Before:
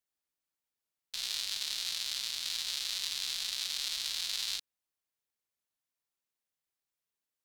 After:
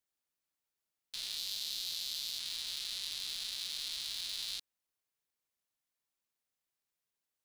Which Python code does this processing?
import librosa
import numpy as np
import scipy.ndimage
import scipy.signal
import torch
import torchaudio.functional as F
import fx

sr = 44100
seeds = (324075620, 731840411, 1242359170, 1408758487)

y = fx.bass_treble(x, sr, bass_db=-1, treble_db=5, at=(1.37, 2.39))
y = 10.0 ** (-28.0 / 20.0) * np.tanh(y / 10.0 ** (-28.0 / 20.0))